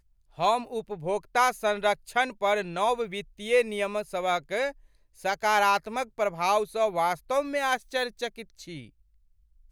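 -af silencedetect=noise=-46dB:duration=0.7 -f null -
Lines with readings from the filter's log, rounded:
silence_start: 8.89
silence_end: 9.72 | silence_duration: 0.83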